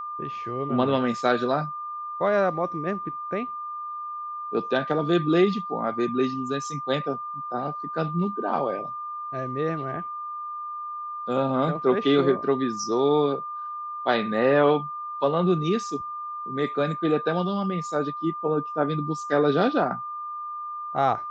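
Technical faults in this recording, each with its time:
tone 1200 Hz -31 dBFS

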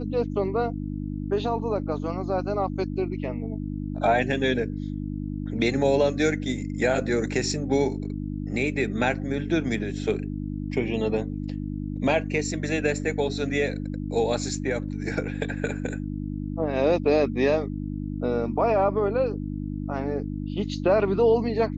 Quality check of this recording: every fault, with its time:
hum 50 Hz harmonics 6 -31 dBFS

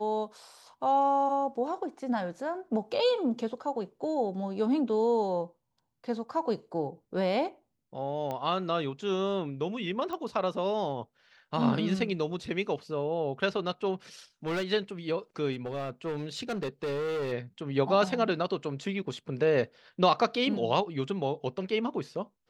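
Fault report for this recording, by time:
8.31 pop -22 dBFS
10.13 pop -24 dBFS
14.46–14.63 clipped -27.5 dBFS
15.52–17.33 clipped -29 dBFS

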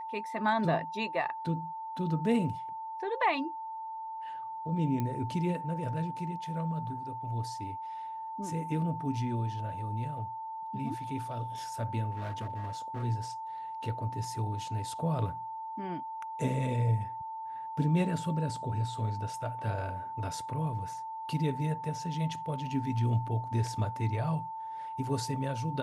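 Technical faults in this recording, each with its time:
tone 890 Hz -37 dBFS
5 pop -21 dBFS
12.11–13.04 clipped -32.5 dBFS

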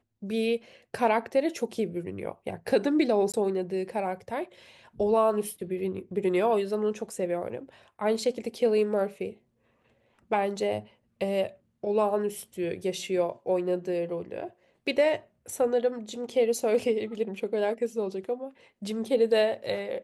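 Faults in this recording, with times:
3.32–3.34 gap 17 ms

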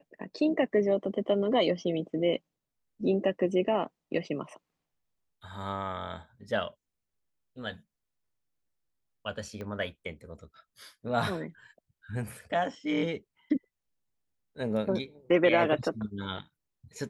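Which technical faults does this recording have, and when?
9.61 pop -27 dBFS

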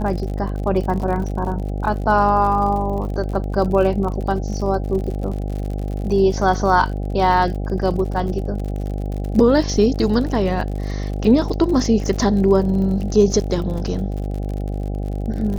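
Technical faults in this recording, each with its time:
buzz 50 Hz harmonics 16 -24 dBFS
crackle 59/s -28 dBFS

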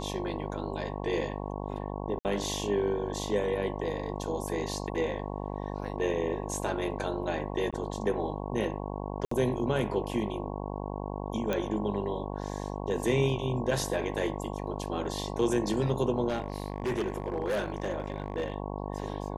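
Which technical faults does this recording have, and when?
buzz 50 Hz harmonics 22 -36 dBFS
2.19–2.25 gap 59 ms
7.71–7.73 gap 16 ms
9.25–9.31 gap 64 ms
11.53 pop -17 dBFS
16.28–18.54 clipped -26 dBFS

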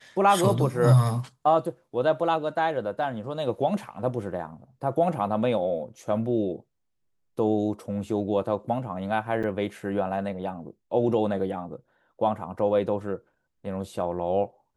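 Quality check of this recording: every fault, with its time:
9.43–9.44 gap 6.2 ms

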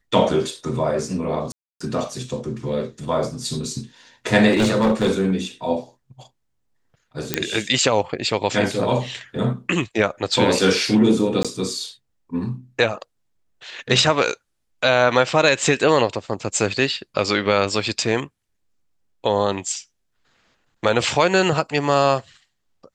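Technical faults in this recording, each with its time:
1.52–1.8 gap 0.285 s
4.5–5.33 clipped -13 dBFS
7.34 pop -2 dBFS
11.43–11.45 gap 16 ms

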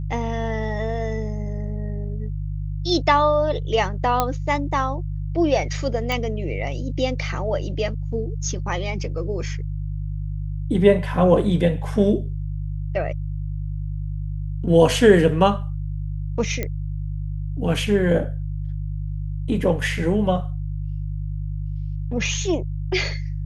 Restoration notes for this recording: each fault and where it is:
hum 50 Hz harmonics 3 -27 dBFS
4.2 pop -5 dBFS
6.12 pop
16.63 pop -11 dBFS

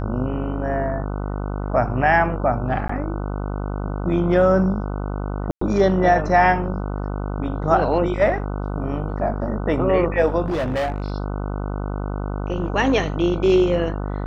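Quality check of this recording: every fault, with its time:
buzz 50 Hz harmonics 30 -26 dBFS
2.88–2.89 gap 14 ms
5.51–5.61 gap 0.104 s
10.46–11.12 clipped -19.5 dBFS

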